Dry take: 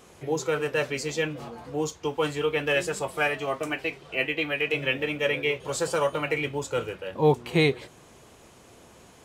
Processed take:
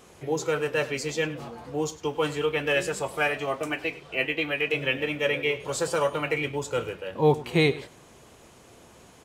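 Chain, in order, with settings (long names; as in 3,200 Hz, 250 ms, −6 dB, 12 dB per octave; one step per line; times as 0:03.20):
single-tap delay 100 ms −17.5 dB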